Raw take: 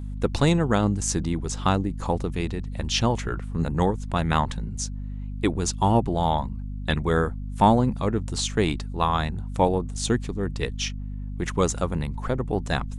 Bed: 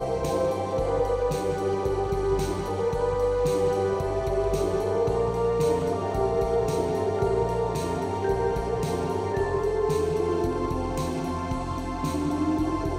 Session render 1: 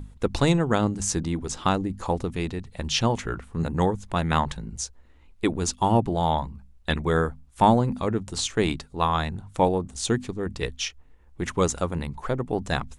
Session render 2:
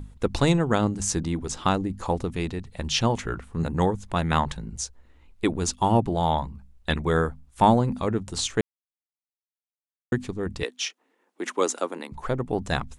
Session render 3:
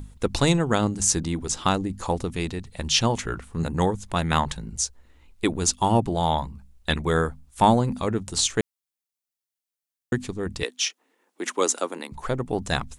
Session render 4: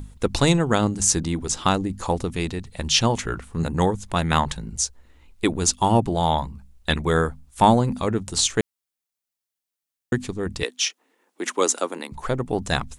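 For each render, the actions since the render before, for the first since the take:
mains-hum notches 50/100/150/200/250 Hz
0:08.61–0:10.12: silence; 0:10.63–0:12.12: Butterworth high-pass 250 Hz
high-shelf EQ 3,700 Hz +8 dB
level +2 dB

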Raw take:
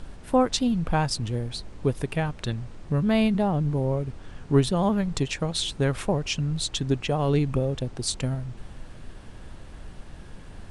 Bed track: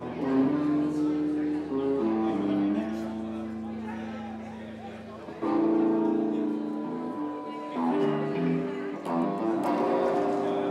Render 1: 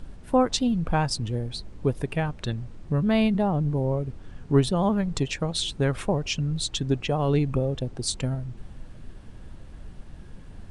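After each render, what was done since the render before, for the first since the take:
broadband denoise 6 dB, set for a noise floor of −43 dBFS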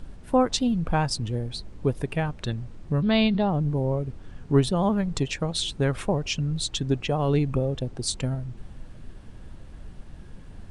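0:03.02–0:03.50: low-pass with resonance 4,000 Hz, resonance Q 3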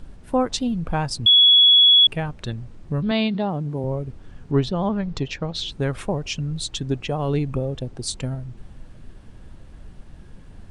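0:01.26–0:02.07: beep over 3,370 Hz −9.5 dBFS
0:03.11–0:03.84: high-pass filter 140 Hz
0:04.51–0:05.72: low-pass filter 5,900 Hz 24 dB per octave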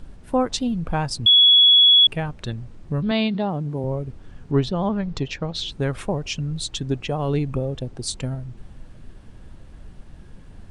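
no processing that can be heard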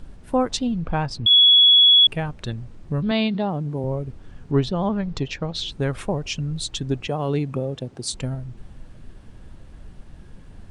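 0:00.57–0:01.29: low-pass filter 7,200 Hz → 3,700 Hz
0:07.07–0:08.13: high-pass filter 120 Hz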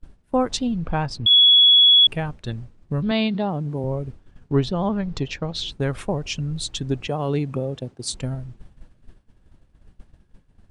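downward expander −30 dBFS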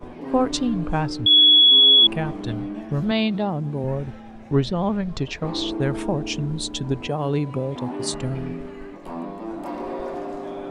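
mix in bed track −4.5 dB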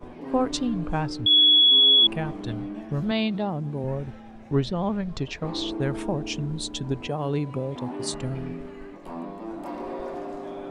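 level −3.5 dB

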